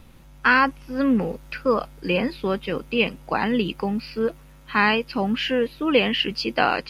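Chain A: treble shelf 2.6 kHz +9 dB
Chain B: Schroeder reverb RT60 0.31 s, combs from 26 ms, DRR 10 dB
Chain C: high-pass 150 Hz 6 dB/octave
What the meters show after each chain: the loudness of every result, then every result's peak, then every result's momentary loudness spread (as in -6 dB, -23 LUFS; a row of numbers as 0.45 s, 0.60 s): -21.0 LUFS, -22.5 LUFS, -23.5 LUFS; -2.5 dBFS, -4.5 dBFS, -4.5 dBFS; 10 LU, 8 LU, 8 LU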